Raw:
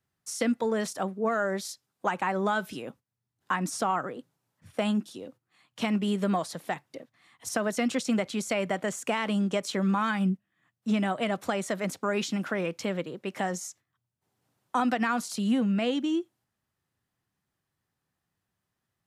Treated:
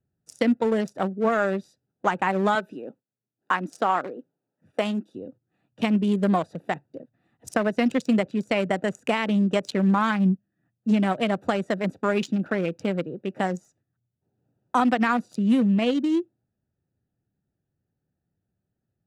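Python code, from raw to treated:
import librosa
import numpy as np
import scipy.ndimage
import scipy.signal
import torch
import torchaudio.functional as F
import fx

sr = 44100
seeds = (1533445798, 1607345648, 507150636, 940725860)

y = fx.wiener(x, sr, points=41)
y = fx.highpass(y, sr, hz=280.0, slope=12, at=(2.55, 5.15))
y = y * 10.0 ** (6.0 / 20.0)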